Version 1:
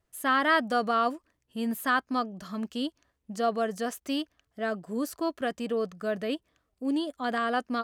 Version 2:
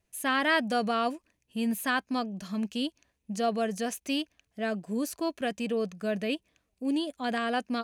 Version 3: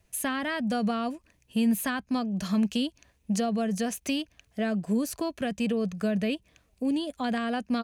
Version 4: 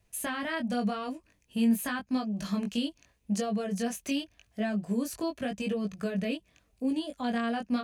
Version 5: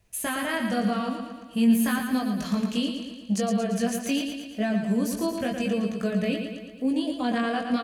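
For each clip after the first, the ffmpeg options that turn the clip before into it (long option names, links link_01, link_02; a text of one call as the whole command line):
ffmpeg -i in.wav -af "equalizer=frequency=200:width_type=o:width=0.33:gain=6,equalizer=frequency=1250:width_type=o:width=0.33:gain=-7,equalizer=frequency=2500:width_type=o:width=0.33:gain=9,equalizer=frequency=4000:width_type=o:width=0.33:gain=3,equalizer=frequency=6300:width_type=o:width=0.33:gain=6,equalizer=frequency=10000:width_type=o:width=0.33:gain=6,volume=-1dB" out.wav
ffmpeg -i in.wav -filter_complex "[0:a]acrossover=split=240[link_01][link_02];[link_01]aecho=1:1:1.4:0.69[link_03];[link_02]acompressor=threshold=-38dB:ratio=6[link_04];[link_03][link_04]amix=inputs=2:normalize=0,volume=8.5dB" out.wav
ffmpeg -i in.wav -af "flanger=delay=19:depth=2.6:speed=0.87" out.wav
ffmpeg -i in.wav -af "aecho=1:1:114|228|342|456|570|684|798|912:0.473|0.274|0.159|0.0923|0.0535|0.0311|0.018|0.0104,volume=4dB" out.wav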